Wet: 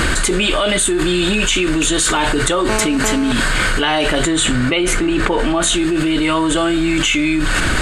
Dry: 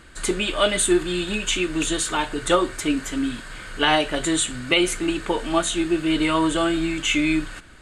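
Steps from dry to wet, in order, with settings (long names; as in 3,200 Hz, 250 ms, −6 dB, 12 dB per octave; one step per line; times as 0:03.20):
0:02.69–0:03.32: phone interference −35 dBFS
0:04.24–0:05.62: high-shelf EQ 4,000 Hz −9.5 dB
envelope flattener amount 100%
level −1.5 dB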